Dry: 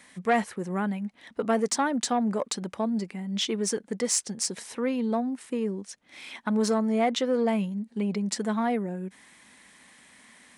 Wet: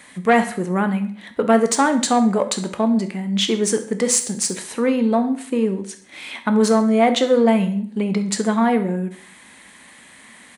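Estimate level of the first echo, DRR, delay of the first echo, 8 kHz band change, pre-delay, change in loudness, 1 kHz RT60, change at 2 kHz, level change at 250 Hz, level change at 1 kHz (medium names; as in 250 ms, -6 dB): -17.0 dB, 7.5 dB, 67 ms, +8.0 dB, 6 ms, +9.0 dB, 0.50 s, +9.0 dB, +9.0 dB, +9.0 dB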